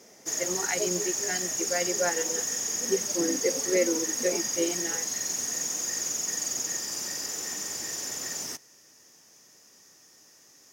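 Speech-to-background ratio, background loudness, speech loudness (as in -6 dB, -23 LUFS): -2.5 dB, -28.5 LUFS, -31.0 LUFS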